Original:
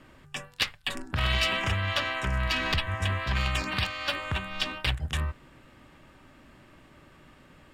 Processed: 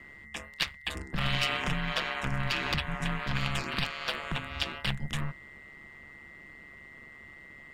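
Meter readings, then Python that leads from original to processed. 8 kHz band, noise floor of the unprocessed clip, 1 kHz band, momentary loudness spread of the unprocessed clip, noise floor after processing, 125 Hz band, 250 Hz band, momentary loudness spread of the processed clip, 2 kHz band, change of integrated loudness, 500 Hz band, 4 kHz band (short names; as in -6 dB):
-3.0 dB, -56 dBFS, -2.5 dB, 9 LU, -51 dBFS, -4.0 dB, +1.0 dB, 19 LU, -2.5 dB, -3.0 dB, -3.5 dB, -3.0 dB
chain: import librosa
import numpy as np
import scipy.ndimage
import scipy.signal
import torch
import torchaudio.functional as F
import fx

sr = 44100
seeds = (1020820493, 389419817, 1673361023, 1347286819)

y = x + 10.0 ** (-45.0 / 20.0) * np.sin(2.0 * np.pi * 2000.0 * np.arange(len(x)) / sr)
y = y * np.sin(2.0 * np.pi * 71.0 * np.arange(len(y)) / sr)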